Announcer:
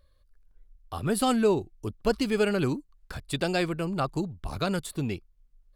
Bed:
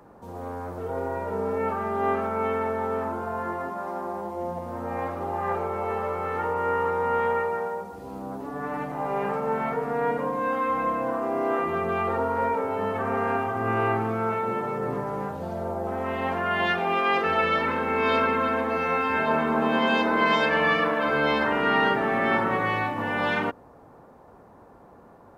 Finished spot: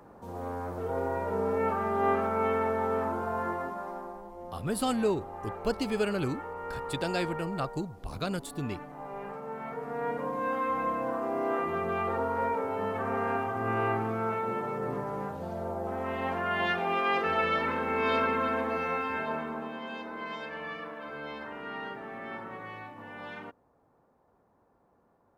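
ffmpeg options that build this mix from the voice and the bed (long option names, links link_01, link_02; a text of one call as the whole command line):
ffmpeg -i stem1.wav -i stem2.wav -filter_complex "[0:a]adelay=3600,volume=-4.5dB[link_01];[1:a]volume=6.5dB,afade=type=out:start_time=3.44:duration=0.77:silence=0.281838,afade=type=in:start_time=9.55:duration=0.91:silence=0.398107,afade=type=out:start_time=18.66:duration=1.1:silence=0.237137[link_02];[link_01][link_02]amix=inputs=2:normalize=0" out.wav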